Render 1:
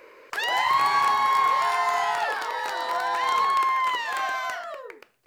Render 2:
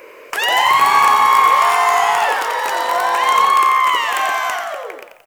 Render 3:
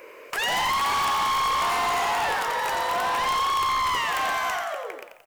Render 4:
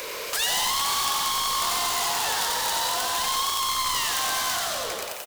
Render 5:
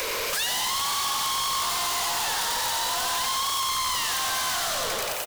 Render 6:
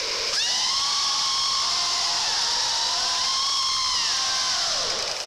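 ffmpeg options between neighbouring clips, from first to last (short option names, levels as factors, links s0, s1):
-filter_complex "[0:a]aexciter=amount=1.2:drive=6.7:freq=2300,equalizer=f=500:w=0.44:g=4,asplit=7[s0][s1][s2][s3][s4][s5][s6];[s1]adelay=88,afreqshift=52,volume=0.447[s7];[s2]adelay=176,afreqshift=104,volume=0.224[s8];[s3]adelay=264,afreqshift=156,volume=0.112[s9];[s4]adelay=352,afreqshift=208,volume=0.0556[s10];[s5]adelay=440,afreqshift=260,volume=0.0279[s11];[s6]adelay=528,afreqshift=312,volume=0.014[s12];[s0][s7][s8][s9][s10][s11][s12]amix=inputs=7:normalize=0,volume=2"
-af "volume=6.68,asoftclip=hard,volume=0.15,volume=0.531"
-filter_complex "[0:a]asplit=2[s0][s1];[s1]highpass=f=720:p=1,volume=25.1,asoftclip=type=tanh:threshold=0.0841[s2];[s0][s2]amix=inputs=2:normalize=0,lowpass=f=5000:p=1,volume=0.501,aexciter=amount=4.8:drive=4.6:freq=3300,aecho=1:1:95|190|285|380|475|570|665:0.376|0.222|0.131|0.0772|0.0455|0.0269|0.0159,volume=0.531"
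-filter_complex "[0:a]acrossover=split=130|820|2500[s0][s1][s2][s3];[s1]aeval=exprs='clip(val(0),-1,0.00794)':c=same[s4];[s0][s4][s2][s3]amix=inputs=4:normalize=0,acompressor=threshold=0.0398:ratio=6,aeval=exprs='0.15*sin(PI/2*2.82*val(0)/0.15)':c=same,volume=0.501"
-af "lowpass=f=5300:t=q:w=4.8,volume=0.794"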